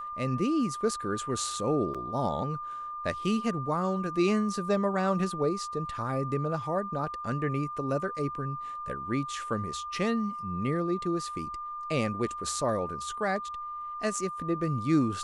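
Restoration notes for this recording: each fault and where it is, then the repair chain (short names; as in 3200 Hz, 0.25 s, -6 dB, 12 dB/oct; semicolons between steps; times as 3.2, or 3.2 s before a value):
tone 1200 Hz -35 dBFS
1.94–1.95 gap 6.5 ms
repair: notch 1200 Hz, Q 30; interpolate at 1.94, 6.5 ms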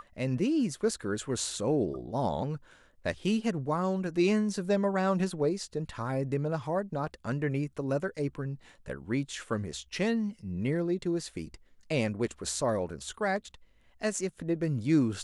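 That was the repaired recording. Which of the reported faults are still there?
none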